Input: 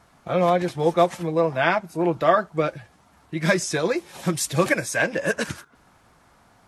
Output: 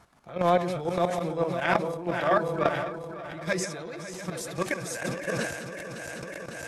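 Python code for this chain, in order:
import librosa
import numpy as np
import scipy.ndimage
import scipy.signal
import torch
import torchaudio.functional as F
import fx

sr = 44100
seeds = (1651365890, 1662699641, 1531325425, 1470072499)

y = fx.reverse_delay_fb(x, sr, ms=276, feedback_pct=78, wet_db=-7.0)
y = fx.level_steps(y, sr, step_db=19)
y = fx.transient(y, sr, attack_db=-10, sustain_db=fx.steps((0.0, 9.0), (3.64, 3.0), (4.9, 10.0)))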